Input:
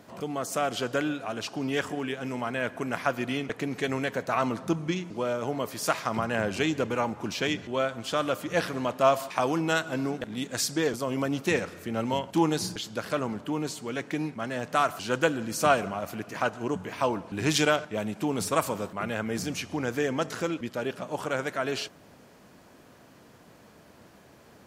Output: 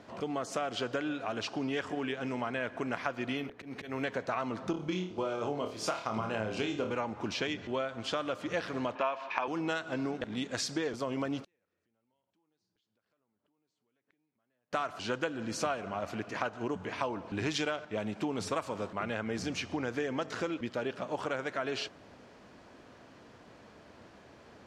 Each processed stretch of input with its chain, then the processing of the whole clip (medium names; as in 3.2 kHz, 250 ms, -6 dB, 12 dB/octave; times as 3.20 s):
3.37–4.03 s: slow attack 227 ms + hum notches 60/120/180/240/300/360/420/480/540 Hz + careless resampling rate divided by 3×, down filtered, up hold
4.71–6.91 s: gate -37 dBFS, range -6 dB + peaking EQ 1.8 kHz -7.5 dB 0.4 oct + flutter echo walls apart 4.7 m, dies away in 0.32 s
8.95–9.48 s: cabinet simulation 260–5400 Hz, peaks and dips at 960 Hz +9 dB, 1.7 kHz +8 dB, 2.5 kHz +9 dB, 4.7 kHz -5 dB + band-stop 1.9 kHz, Q 17
11.44–14.73 s: compression 5:1, threshold -40 dBFS + inverted gate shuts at -39 dBFS, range -37 dB
whole clip: low-pass 5.2 kHz 12 dB/octave; peaking EQ 160 Hz -5 dB 0.64 oct; compression 5:1, threshold -30 dBFS